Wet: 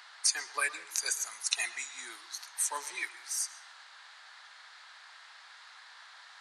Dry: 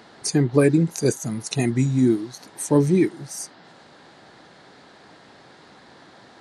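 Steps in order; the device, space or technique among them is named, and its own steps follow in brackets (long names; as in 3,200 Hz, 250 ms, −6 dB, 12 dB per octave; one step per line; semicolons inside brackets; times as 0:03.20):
filtered reverb send (on a send: high-pass filter 270 Hz 24 dB per octave + low-pass filter 6,800 Hz 12 dB per octave + convolution reverb RT60 0.55 s, pre-delay 109 ms, DRR 15 dB)
on the sum: high-pass filter 1,100 Hz 24 dB per octave
parametric band 80 Hz +5 dB 2.8 octaves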